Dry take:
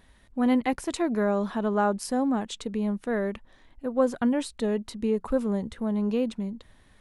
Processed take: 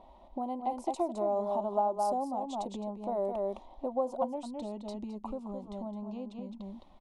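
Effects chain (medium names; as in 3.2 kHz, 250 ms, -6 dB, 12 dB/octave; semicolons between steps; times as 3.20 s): static phaser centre 450 Hz, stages 6; delay 213 ms -7 dB; compression 16:1, threshold -38 dBFS, peak gain reduction 19 dB; high-order bell 610 Hz +15 dB, from 4.35 s +8 dB; level-controlled noise filter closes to 2.6 kHz, open at -29.5 dBFS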